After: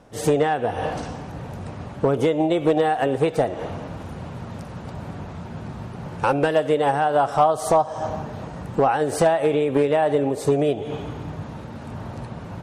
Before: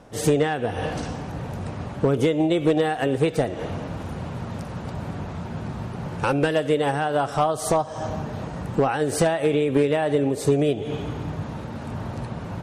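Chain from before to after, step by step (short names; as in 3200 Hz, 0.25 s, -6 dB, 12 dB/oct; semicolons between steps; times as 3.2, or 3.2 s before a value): dynamic EQ 800 Hz, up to +8 dB, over -36 dBFS, Q 0.88; gain -2.5 dB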